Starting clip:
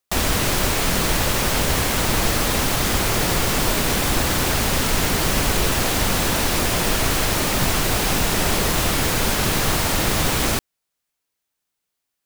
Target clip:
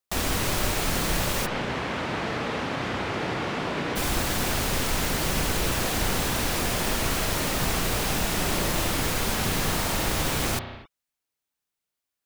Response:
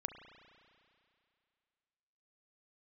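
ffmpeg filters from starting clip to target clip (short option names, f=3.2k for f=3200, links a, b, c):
-filter_complex "[0:a]asplit=3[a][b][c];[a]afade=t=out:st=1.45:d=0.02[d];[b]highpass=130,lowpass=2.8k,afade=t=in:st=1.45:d=0.02,afade=t=out:st=3.95:d=0.02[e];[c]afade=t=in:st=3.95:d=0.02[f];[d][e][f]amix=inputs=3:normalize=0[g];[1:a]atrim=start_sample=2205,afade=t=out:st=0.33:d=0.01,atrim=end_sample=14994[h];[g][h]afir=irnorm=-1:irlink=0,volume=-4dB"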